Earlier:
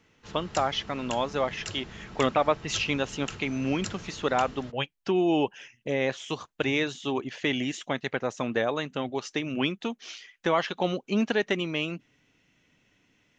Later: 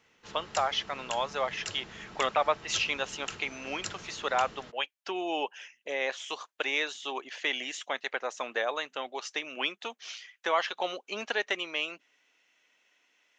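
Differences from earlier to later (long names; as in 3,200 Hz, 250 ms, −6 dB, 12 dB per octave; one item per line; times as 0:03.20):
speech: add high-pass filter 570 Hz 12 dB per octave
master: add low-shelf EQ 200 Hz −11 dB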